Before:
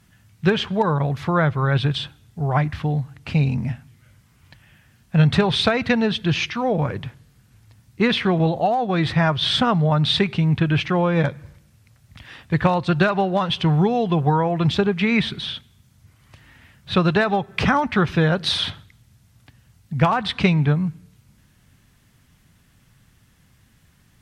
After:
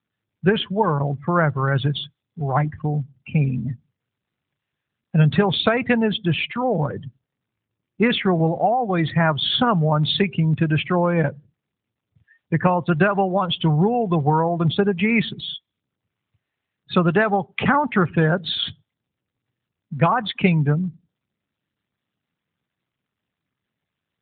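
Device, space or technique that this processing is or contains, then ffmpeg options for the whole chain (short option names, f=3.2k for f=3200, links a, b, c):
mobile call with aggressive noise cancelling: -af "highpass=f=130:p=1,afftdn=nr=33:nf=-29,volume=1.5dB" -ar 8000 -c:a libopencore_amrnb -b:a 12200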